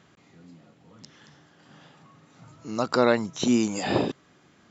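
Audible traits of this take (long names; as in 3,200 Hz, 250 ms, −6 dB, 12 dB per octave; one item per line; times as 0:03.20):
background noise floor −60 dBFS
spectral slope −5.0 dB per octave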